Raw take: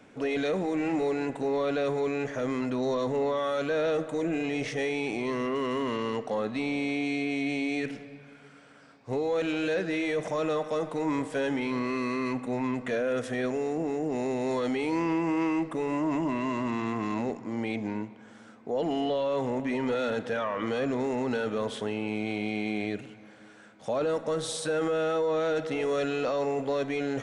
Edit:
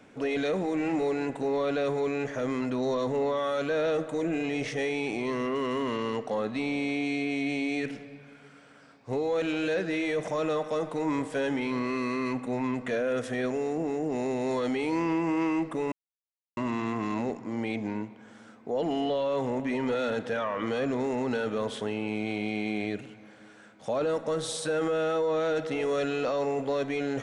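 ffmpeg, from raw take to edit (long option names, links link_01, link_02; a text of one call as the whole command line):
ffmpeg -i in.wav -filter_complex "[0:a]asplit=3[link_01][link_02][link_03];[link_01]atrim=end=15.92,asetpts=PTS-STARTPTS,afade=type=out:start_time=15.916:duration=0.004:curve=hsin[link_04];[link_02]atrim=start=15.92:end=16.57,asetpts=PTS-STARTPTS,volume=0[link_05];[link_03]atrim=start=16.57,asetpts=PTS-STARTPTS,afade=type=in:duration=0.004:curve=hsin[link_06];[link_04][link_05][link_06]concat=n=3:v=0:a=1" out.wav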